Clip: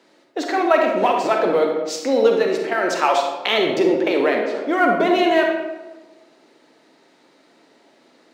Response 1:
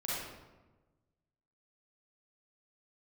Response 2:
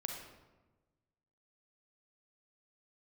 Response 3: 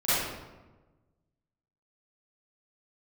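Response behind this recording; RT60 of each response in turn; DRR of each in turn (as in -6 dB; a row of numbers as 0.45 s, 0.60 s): 2; 1.2 s, 1.2 s, 1.2 s; -8.0 dB, 1.5 dB, -16.0 dB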